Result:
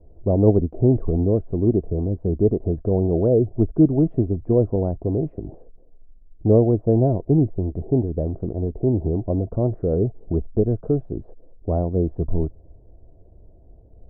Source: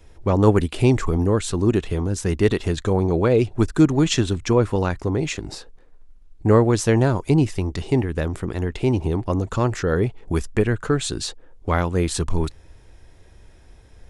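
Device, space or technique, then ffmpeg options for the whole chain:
under water: -af "lowpass=frequency=570:width=0.5412,lowpass=frequency=570:width=1.3066,equalizer=frequency=670:width_type=o:width=0.28:gain=10.5"

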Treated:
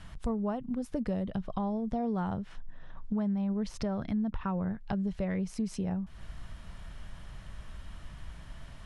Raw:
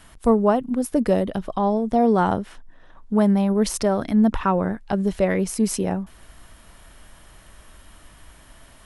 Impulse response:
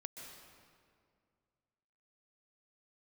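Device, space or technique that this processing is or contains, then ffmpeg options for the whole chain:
jukebox: -filter_complex "[0:a]asettb=1/sr,asplit=3[link_01][link_02][link_03];[link_01]atrim=end=3.134[link_04];[link_02]atrim=start=3.13:end=4.82,asetpts=PTS-STARTPTS,afade=type=in:duration=0.004:curve=qsin,afade=type=out:start_time=1.686:duration=0.004:curve=qsin,equalizer=frequency=9300:width_type=o:width=1.3:gain=-5.5[link_05];[link_03]atrim=start=4.816[link_06];[link_04][link_05]acrossfade=duration=0.004:curve1=hsin:curve2=qsin[link_07];[link_07][link_06]acrossfade=duration=0.004:curve1=qsin:curve2=hsin,lowpass=5900,lowshelf=frequency=220:width_type=q:width=1.5:gain=7.5,acompressor=threshold=-29dB:ratio=4,volume=-3dB"

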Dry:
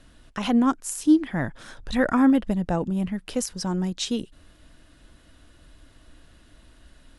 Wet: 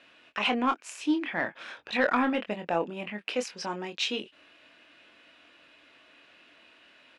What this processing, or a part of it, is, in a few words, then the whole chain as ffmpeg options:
intercom: -filter_complex "[0:a]highpass=430,lowpass=4000,equalizer=frequency=2500:width_type=o:width=0.47:gain=12,asoftclip=type=tanh:threshold=-13.5dB,asplit=2[link_01][link_02];[link_02]adelay=24,volume=-7dB[link_03];[link_01][link_03]amix=inputs=2:normalize=0"

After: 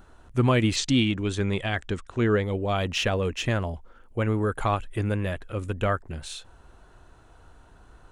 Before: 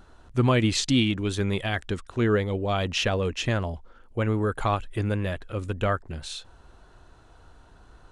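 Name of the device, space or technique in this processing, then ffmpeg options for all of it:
exciter from parts: -filter_complex "[0:a]asplit=2[link_01][link_02];[link_02]highpass=4600,asoftclip=type=tanh:threshold=-33dB,highpass=frequency=2100:width=0.5412,highpass=frequency=2100:width=1.3066,volume=-5.5dB[link_03];[link_01][link_03]amix=inputs=2:normalize=0,asplit=3[link_04][link_05][link_06];[link_04]afade=type=out:start_time=0.75:duration=0.02[link_07];[link_05]lowpass=frequency=8500:width=0.5412,lowpass=frequency=8500:width=1.3066,afade=type=in:start_time=0.75:duration=0.02,afade=type=out:start_time=2.42:duration=0.02[link_08];[link_06]afade=type=in:start_time=2.42:duration=0.02[link_09];[link_07][link_08][link_09]amix=inputs=3:normalize=0"

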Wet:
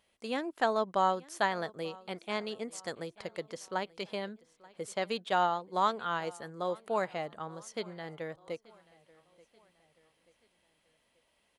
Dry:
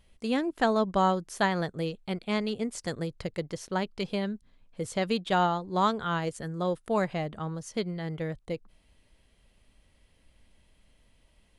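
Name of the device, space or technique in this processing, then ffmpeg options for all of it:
filter by subtraction: -filter_complex "[0:a]asplit=3[link_01][link_02][link_03];[link_01]afade=type=out:start_time=4.93:duration=0.02[link_04];[link_02]agate=range=-8dB:threshold=-37dB:ratio=16:detection=peak,afade=type=in:start_time=4.93:duration=0.02,afade=type=out:start_time=6.38:duration=0.02[link_05];[link_03]afade=type=in:start_time=6.38:duration=0.02[link_06];[link_04][link_05][link_06]amix=inputs=3:normalize=0,asplit=2[link_07][link_08];[link_08]lowpass=730,volume=-1[link_09];[link_07][link_09]amix=inputs=2:normalize=0,aecho=1:1:883|1766|2649:0.0708|0.0333|0.0156,volume=-4dB"

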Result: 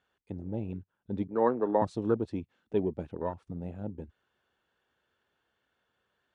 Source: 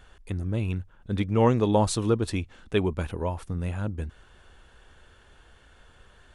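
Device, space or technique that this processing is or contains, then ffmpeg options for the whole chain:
over-cleaned archive recording: -filter_complex "[0:a]asettb=1/sr,asplit=3[link_01][link_02][link_03];[link_01]atrim=end=1.274[link_04];[link_02]atrim=start=1.27:end=1.82,asetpts=PTS-STARTPTS,afade=type=in:duration=0.004:curve=qsin,afade=type=out:start_time=0.546:duration=0.004:curve=qsin,acrossover=split=240 2200:gain=0.126 1 0.0794[link_05][link_06][link_07];[link_05][link_06][link_07]amix=inputs=3:normalize=0[link_08];[link_03]atrim=start=1.816[link_09];[link_04][link_08]acrossfade=duration=0.004:curve1=hsin:curve2=qsin[link_10];[link_10][link_09]acrossfade=duration=0.004:curve1=qsin:curve2=hsin,highpass=160,lowpass=5500,afwtdn=0.0224,volume=-3dB"

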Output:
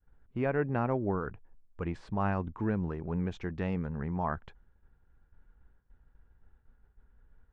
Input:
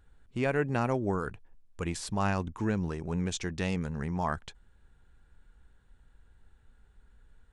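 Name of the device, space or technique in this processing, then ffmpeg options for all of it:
hearing-loss simulation: -af "lowpass=1700,agate=range=-33dB:threshold=-54dB:ratio=3:detection=peak,volume=-1dB"

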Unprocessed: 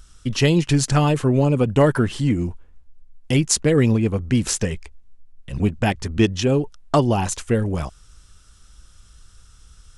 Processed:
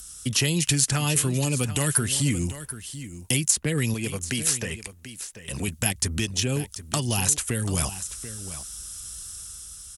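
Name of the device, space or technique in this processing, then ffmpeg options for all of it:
FM broadcast chain: -filter_complex "[0:a]highpass=48,dynaudnorm=framelen=100:gausssize=11:maxgain=4dB,acrossover=split=200|1600|3200[link_01][link_02][link_03][link_04];[link_01]acompressor=threshold=-23dB:ratio=4[link_05];[link_02]acompressor=threshold=-30dB:ratio=4[link_06];[link_03]acompressor=threshold=-31dB:ratio=4[link_07];[link_04]acompressor=threshold=-37dB:ratio=4[link_08];[link_05][link_06][link_07][link_08]amix=inputs=4:normalize=0,aemphasis=mode=production:type=50fm,alimiter=limit=-13dB:level=0:latency=1:release=201,asoftclip=type=hard:threshold=-14dB,lowpass=frequency=15000:width=0.5412,lowpass=frequency=15000:width=1.3066,aemphasis=mode=production:type=50fm,asettb=1/sr,asplit=3[link_09][link_10][link_11];[link_09]atrim=end=3.944[link_12];[link_10]atrim=start=3.94:end=5.68,asetpts=PTS-STARTPTS,afade=type=in:duration=0.004:curve=qsin,afade=type=out:start_time=1.736:duration=0.004:curve=qsin,bass=frequency=250:gain=-7,treble=frequency=4000:gain=-4[link_13];[link_11]atrim=start=5.676[link_14];[link_12][link_13]acrossfade=duration=0.004:curve1=hsin:curve2=qsin[link_15];[link_15][link_14]acrossfade=duration=0.004:curve1=qsin:curve2=hsin,aecho=1:1:737:0.224,volume=-1dB"

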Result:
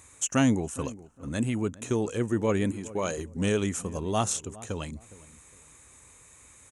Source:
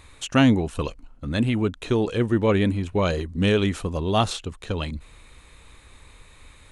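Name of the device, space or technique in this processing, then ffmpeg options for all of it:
budget condenser microphone: -filter_complex "[0:a]asettb=1/sr,asplit=3[link_01][link_02][link_03];[link_01]atrim=end=2.714[link_04];[link_02]atrim=start=2.71:end=3.18,asetpts=PTS-STARTPTS,afade=type=in:duration=0.004:curve=qsin,afade=type=out:start_time=0.466:duration=0.004:curve=qsin,highpass=frequency=270:poles=1[link_05];[link_03]atrim=start=3.176[link_06];[link_04][link_05]acrossfade=duration=0.004:curve1=hsin:curve2=qsin[link_07];[link_07][link_06]acrossfade=duration=0.004:curve1=qsin:curve2=hsin,highpass=85,highshelf=frequency=5300:width_type=q:width=3:gain=8.5,asplit=2[link_08][link_09];[link_09]adelay=411,lowpass=frequency=920:poles=1,volume=-17.5dB,asplit=2[link_10][link_11];[link_11]adelay=411,lowpass=frequency=920:poles=1,volume=0.27[link_12];[link_08][link_10][link_12]amix=inputs=3:normalize=0,volume=-5.5dB"

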